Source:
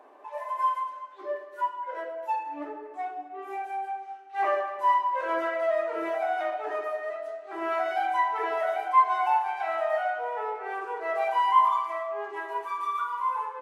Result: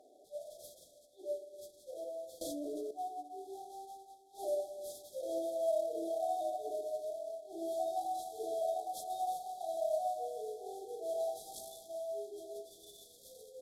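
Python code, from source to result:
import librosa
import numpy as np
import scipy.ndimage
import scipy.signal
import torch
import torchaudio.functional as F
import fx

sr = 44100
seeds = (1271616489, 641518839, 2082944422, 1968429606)

y = fx.cvsd(x, sr, bps=64000)
y = fx.brickwall_bandstop(y, sr, low_hz=770.0, high_hz=3200.0)
y = fx.env_flatten(y, sr, amount_pct=100, at=(2.41, 2.91))
y = y * 10.0 ** (-6.0 / 20.0)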